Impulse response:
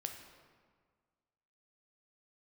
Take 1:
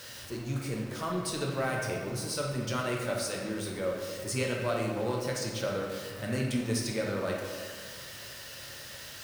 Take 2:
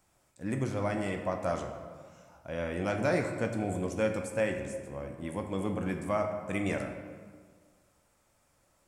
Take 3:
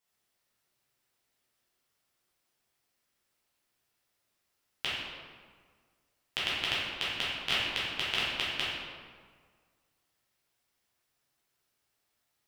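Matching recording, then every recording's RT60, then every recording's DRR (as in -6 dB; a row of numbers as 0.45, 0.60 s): 2; 1.7, 1.7, 1.7 s; -1.5, 4.0, -9.0 dB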